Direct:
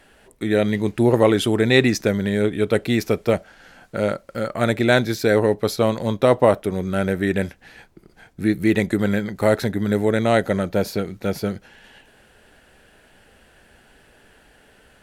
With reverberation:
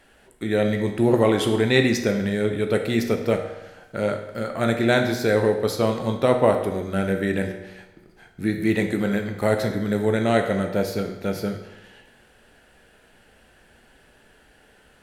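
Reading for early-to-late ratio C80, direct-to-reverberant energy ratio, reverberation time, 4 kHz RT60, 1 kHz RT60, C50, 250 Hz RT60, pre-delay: 9.5 dB, 4.5 dB, 1.0 s, 0.90 s, 1.0 s, 7.5 dB, 1.0 s, 13 ms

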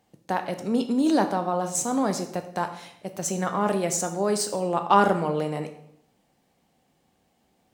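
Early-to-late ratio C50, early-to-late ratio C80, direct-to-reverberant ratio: 10.5 dB, 13.0 dB, 6.5 dB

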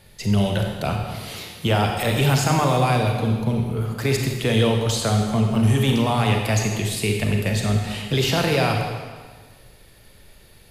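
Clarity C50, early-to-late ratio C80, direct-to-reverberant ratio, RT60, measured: 3.0 dB, 4.5 dB, 2.0 dB, 1.5 s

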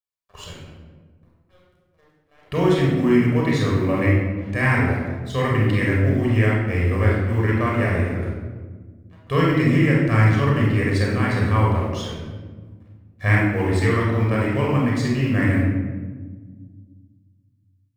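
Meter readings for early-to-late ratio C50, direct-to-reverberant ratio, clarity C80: 0.0 dB, -4.0 dB, 3.0 dB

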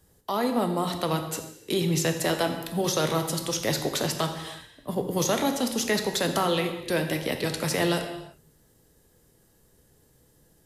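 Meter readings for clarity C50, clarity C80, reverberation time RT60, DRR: 7.5 dB, 9.5 dB, not exponential, 5.0 dB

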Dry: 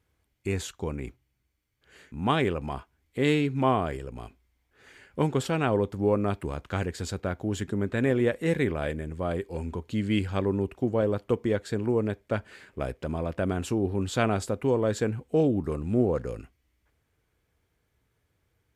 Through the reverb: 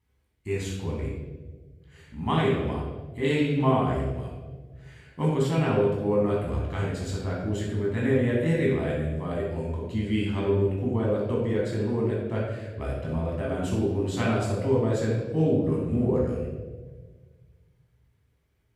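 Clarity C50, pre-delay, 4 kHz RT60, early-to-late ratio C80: 1.0 dB, 13 ms, 0.95 s, 4.0 dB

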